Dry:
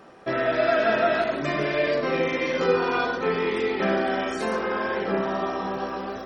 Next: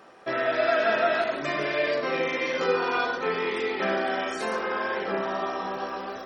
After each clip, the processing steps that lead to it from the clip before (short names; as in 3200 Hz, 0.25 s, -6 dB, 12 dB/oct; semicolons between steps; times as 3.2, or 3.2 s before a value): low shelf 300 Hz -11 dB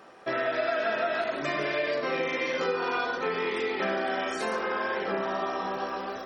compressor 4:1, threshold -25 dBFS, peak gain reduction 6.5 dB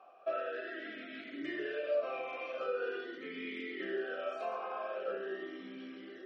vowel sweep a-i 0.43 Hz; gain +1 dB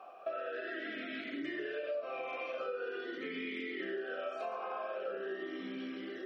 compressor 4:1, threshold -44 dBFS, peak gain reduction 13 dB; gain +6.5 dB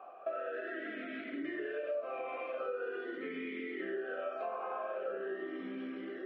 BPF 170–2000 Hz; gain +1 dB